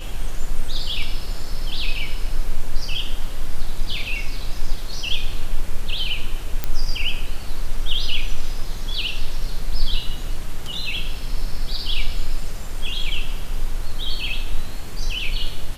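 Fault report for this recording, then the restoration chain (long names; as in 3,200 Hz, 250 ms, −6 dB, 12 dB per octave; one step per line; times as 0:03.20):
0:06.64: click −8 dBFS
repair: click removal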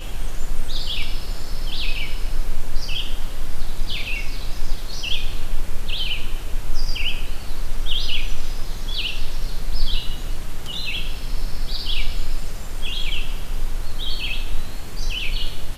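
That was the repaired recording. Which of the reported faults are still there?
none of them is left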